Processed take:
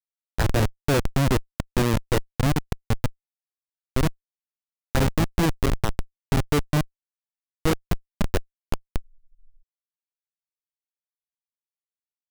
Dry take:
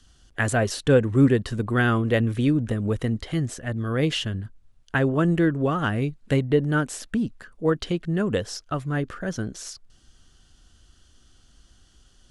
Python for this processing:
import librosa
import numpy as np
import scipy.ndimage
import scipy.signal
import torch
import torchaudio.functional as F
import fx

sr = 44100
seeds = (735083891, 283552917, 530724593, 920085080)

y = fx.schmitt(x, sr, flips_db=-17.0)
y = fx.spec_freeze(y, sr, seeds[0], at_s=9.03, hold_s=0.58)
y = F.gain(torch.from_numpy(y), 6.0).numpy()